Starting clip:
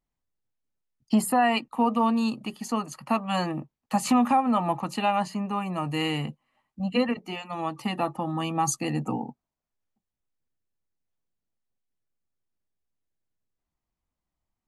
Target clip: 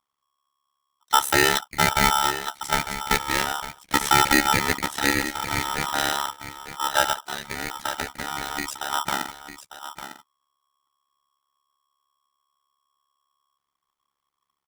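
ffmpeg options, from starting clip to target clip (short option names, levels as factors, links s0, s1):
-filter_complex "[0:a]asettb=1/sr,asplit=3[s0][s1][s2];[s0]atrim=end=4.954[s3];[s1]atrim=start=4.95:end=5.48,asetpts=PTS-STARTPTS,afade=t=in:d=0.004:c=qsin,afade=t=out:st=0.526:d=0.004:c=qsin,highpass=f=430:p=1[s4];[s2]atrim=start=5.476[s5];[s3][s4]acrossfade=d=0.004:c1=hsin:c2=qsin[s6];[s6][s5]acrossfade=d=0.004:c1=qsin:c2=hsin,asettb=1/sr,asplit=3[s7][s8][s9];[s7]atrim=end=7.514[s10];[s8]atrim=start=7.51:end=8.92,asetpts=PTS-STARTPTS,afade=t=in:d=0.004:c=qsin,afade=t=out:st=1.406:d=0.004:c=qsin,acompressor=threshold=0.0316:ratio=5[s11];[s9]atrim=start=8.916[s12];[s10][s11]acrossfade=d=0.004:c1=hsin:c2=qsin[s13];[s13][s12]acrossfade=d=0.004:c1=qsin:c2=hsin,tremolo=f=70:d=0.947,aecho=1:1:901:0.266,aeval=exprs='val(0)*sgn(sin(2*PI*1100*n/s))':c=same,volume=2.11"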